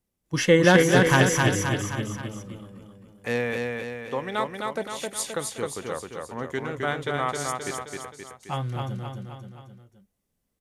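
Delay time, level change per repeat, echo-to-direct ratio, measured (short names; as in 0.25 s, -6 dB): 0.263 s, -5.5 dB, -2.0 dB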